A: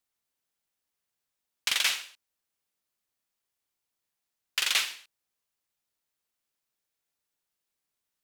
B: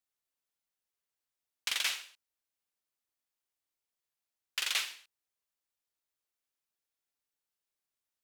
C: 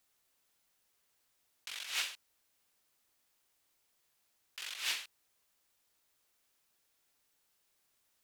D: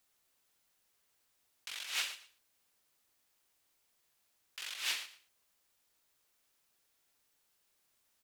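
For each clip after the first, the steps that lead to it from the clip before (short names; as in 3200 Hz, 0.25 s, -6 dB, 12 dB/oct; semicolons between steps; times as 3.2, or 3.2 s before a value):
bell 170 Hz -6 dB 0.8 oct; gain -6 dB
negative-ratio compressor -45 dBFS, ratio -1; gain +4.5 dB
feedback echo 0.116 s, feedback 22%, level -15 dB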